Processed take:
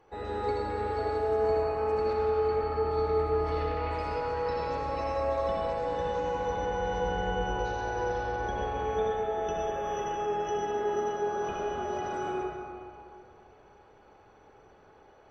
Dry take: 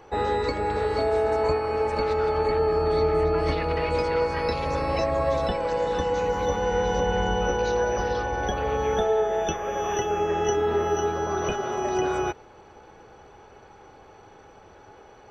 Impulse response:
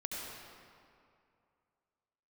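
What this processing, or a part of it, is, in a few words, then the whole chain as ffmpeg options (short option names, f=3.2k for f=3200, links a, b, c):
swimming-pool hall: -filter_complex "[1:a]atrim=start_sample=2205[a];[0:a][a]afir=irnorm=-1:irlink=0,highshelf=f=5.8k:g=-5,volume=-9dB"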